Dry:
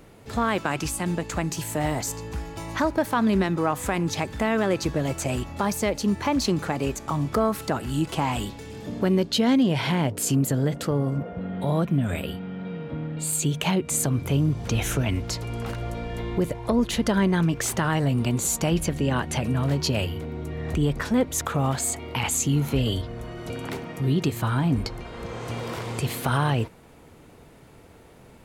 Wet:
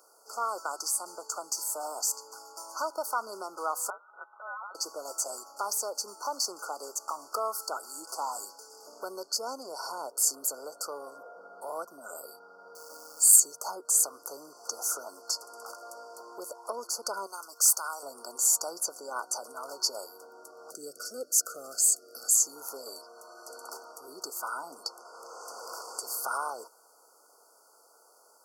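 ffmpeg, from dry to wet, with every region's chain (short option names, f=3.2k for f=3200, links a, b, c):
-filter_complex "[0:a]asettb=1/sr,asplit=3[a][b][c];[a]atrim=end=3.904[d];[b]atrim=start=3.9:end=4.75,asetpts=PTS-STARTPTS,afade=t=in:d=0.004:c=qsin,afade=t=out:st=0.846:d=0.004:c=qsin,tiltshelf=f=1.1k:g=8,lowpass=f=2.2k:t=q:w=0.5098,lowpass=f=2.2k:t=q:w=0.6013,lowpass=f=2.2k:t=q:w=0.9,lowpass=f=2.2k:t=q:w=2.563,afreqshift=-2600[e];[c]atrim=start=4.746[f];[d][e]acrossfade=d=0.004:c1=hsin:c2=qsin[g];[g][f]acrossfade=d=0.004:c1=qsin:c2=hsin,asettb=1/sr,asplit=3[h][i][j];[h]atrim=end=12.754[k];[i]atrim=start=12.75:end=13.4,asetpts=PTS-STARTPTS,afade=t=in:d=0.004:c=qsin,afade=t=out:st=0.646:d=0.004:c=qsin,highshelf=f=3.8k:g=9,acrusher=bits=8:dc=4:mix=0:aa=0.000001[l];[j]atrim=start=13.396[m];[k][l]acrossfade=d=0.004:c1=hsin:c2=qsin[n];[n][m]acrossfade=d=0.004:c1=qsin:c2=hsin,asettb=1/sr,asplit=3[o][p][q];[o]atrim=end=17.264[r];[p]atrim=start=17.26:end=18.03,asetpts=PTS-STARTPTS,afade=t=in:d=0.004:c=qsin,afade=t=out:st=0.766:d=0.004:c=qsin,highpass=f=1.2k:p=1,highshelf=f=7.1k:g=9[s];[q]atrim=start=18.026[t];[r][s]acrossfade=d=0.004:c1=hsin:c2=qsin[u];[u][t]acrossfade=d=0.004:c1=qsin:c2=hsin,asettb=1/sr,asplit=3[v][w][x];[v]atrim=end=20.714[y];[w]atrim=start=20.71:end=22.36,asetpts=PTS-STARTPTS,afade=t=in:d=0.004:c=qsin,afade=t=out:st=1.646:d=0.004:c=qsin,asuperstop=centerf=940:order=4:qfactor=0.96,bass=f=250:g=7,treble=f=4k:g=2[z];[x]atrim=start=22.356[aa];[y][z]acrossfade=d=0.004:c1=hsin:c2=qsin[ab];[ab][aa]acrossfade=d=0.004:c1=qsin:c2=hsin,highpass=f=450:w=0.5412,highpass=f=450:w=1.3066,afftfilt=real='re*(1-between(b*sr/4096,1500,4400))':imag='im*(1-between(b*sr/4096,1500,4400))':win_size=4096:overlap=0.75,tiltshelf=f=970:g=-8,volume=-5.5dB"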